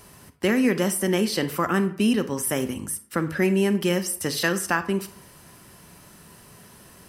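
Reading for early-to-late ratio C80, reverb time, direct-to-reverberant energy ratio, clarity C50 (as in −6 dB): 17.5 dB, 0.55 s, 11.0 dB, 13.5 dB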